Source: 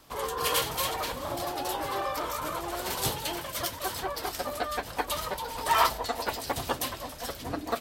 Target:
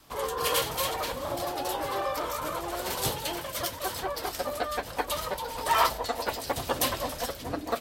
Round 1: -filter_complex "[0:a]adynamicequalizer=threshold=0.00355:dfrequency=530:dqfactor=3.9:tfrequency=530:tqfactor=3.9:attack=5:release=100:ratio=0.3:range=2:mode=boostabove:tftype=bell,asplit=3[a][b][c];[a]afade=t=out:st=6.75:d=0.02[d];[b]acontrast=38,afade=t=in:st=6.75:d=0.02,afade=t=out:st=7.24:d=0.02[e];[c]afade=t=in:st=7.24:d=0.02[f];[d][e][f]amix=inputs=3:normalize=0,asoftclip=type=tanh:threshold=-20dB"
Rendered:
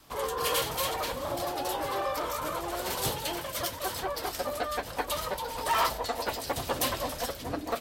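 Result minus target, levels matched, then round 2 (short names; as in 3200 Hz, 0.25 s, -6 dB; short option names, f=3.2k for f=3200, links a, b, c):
soft clip: distortion +17 dB
-filter_complex "[0:a]adynamicequalizer=threshold=0.00355:dfrequency=530:dqfactor=3.9:tfrequency=530:tqfactor=3.9:attack=5:release=100:ratio=0.3:range=2:mode=boostabove:tftype=bell,asplit=3[a][b][c];[a]afade=t=out:st=6.75:d=0.02[d];[b]acontrast=38,afade=t=in:st=6.75:d=0.02,afade=t=out:st=7.24:d=0.02[e];[c]afade=t=in:st=7.24:d=0.02[f];[d][e][f]amix=inputs=3:normalize=0,asoftclip=type=tanh:threshold=-8.5dB"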